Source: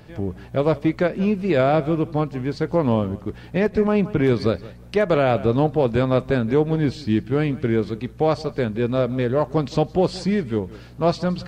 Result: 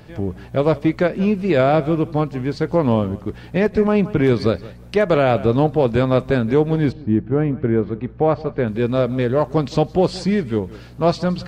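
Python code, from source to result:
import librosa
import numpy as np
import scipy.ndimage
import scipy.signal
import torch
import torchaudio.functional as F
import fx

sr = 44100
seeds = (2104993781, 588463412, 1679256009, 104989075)

y = fx.lowpass(x, sr, hz=fx.line((6.91, 1000.0), (8.66, 2300.0)), slope=12, at=(6.91, 8.66), fade=0.02)
y = y * librosa.db_to_amplitude(2.5)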